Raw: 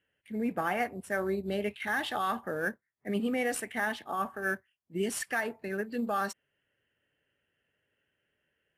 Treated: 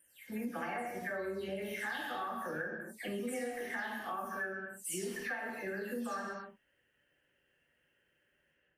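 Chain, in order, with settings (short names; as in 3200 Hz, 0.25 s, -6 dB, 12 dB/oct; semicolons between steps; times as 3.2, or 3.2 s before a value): spectral delay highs early, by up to 0.256 s; non-linear reverb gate 0.29 s falling, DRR -1.5 dB; compressor 5:1, threshold -37 dBFS, peak gain reduction 14 dB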